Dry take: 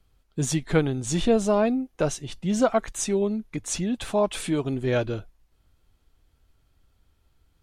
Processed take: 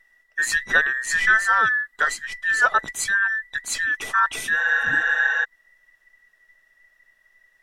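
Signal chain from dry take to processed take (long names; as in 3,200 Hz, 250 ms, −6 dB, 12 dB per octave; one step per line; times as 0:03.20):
frequency inversion band by band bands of 2,000 Hz
healed spectral selection 0:04.62–0:05.42, 350–7,700 Hz before
level +2.5 dB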